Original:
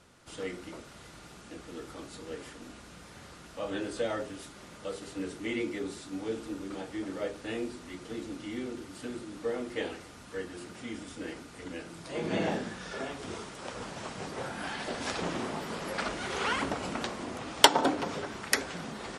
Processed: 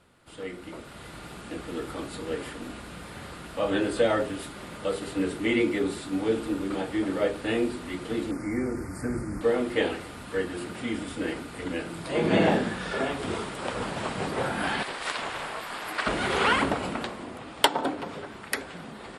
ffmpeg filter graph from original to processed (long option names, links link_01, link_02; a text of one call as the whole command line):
ffmpeg -i in.wav -filter_complex "[0:a]asettb=1/sr,asplit=3[link_01][link_02][link_03];[link_01]atrim=end=8.314[link_04];[link_02]atrim=start=8.31:end=9.41,asetpts=PTS-STARTPTS,afade=type=in:duration=0.004:curve=qsin,afade=type=out:start_time=1.096:duration=0.004:curve=qsin,asubboost=boost=11:cutoff=160,asuperstop=centerf=3300:order=8:qfactor=1.3[link_05];[link_03]atrim=start=9.406[link_06];[link_04][link_05]acrossfade=duration=0.004:curve1=hsin:curve2=qsin[link_07];[link_07][link_06]acrossfade=duration=0.004:curve1=qsin:curve2=hsin,asettb=1/sr,asplit=3[link_08][link_09][link_10];[link_08]atrim=end=14.834[link_11];[link_09]atrim=start=14.83:end=16.07,asetpts=PTS-STARTPTS,afade=type=in:duration=0.004:curve=qsin,afade=type=out:start_time=1.236:duration=0.004:curve=qsin,highpass=800,aeval=exprs='val(0)*sin(2*PI*220*n/s)':channel_layout=same[link_12];[link_10]atrim=start=16.066[link_13];[link_11][link_12]acrossfade=duration=0.004:curve1=hsin:curve2=qsin[link_14];[link_14][link_13]acrossfade=duration=0.004:curve1=qsin:curve2=hsin,equalizer=frequency=6000:width=2.3:gain=-11,dynaudnorm=framelen=190:gausssize=9:maxgain=10dB,volume=-1dB" out.wav